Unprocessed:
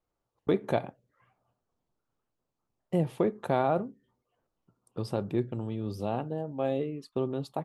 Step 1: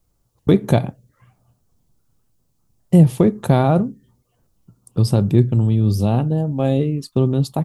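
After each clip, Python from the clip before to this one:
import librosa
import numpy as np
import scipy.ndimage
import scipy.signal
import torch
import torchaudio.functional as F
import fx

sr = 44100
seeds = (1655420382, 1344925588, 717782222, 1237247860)

y = fx.bass_treble(x, sr, bass_db=15, treble_db=13)
y = y * librosa.db_to_amplitude(7.0)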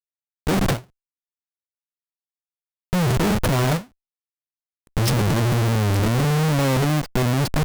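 y = fx.wow_flutter(x, sr, seeds[0], rate_hz=2.1, depth_cents=80.0)
y = fx.schmitt(y, sr, flips_db=-31.5)
y = fx.end_taper(y, sr, db_per_s=270.0)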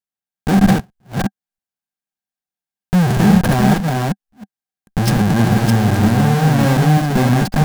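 y = fx.reverse_delay(x, sr, ms=317, wet_db=-2.5)
y = fx.small_body(y, sr, hz=(200.0, 760.0, 1600.0), ring_ms=40, db=11)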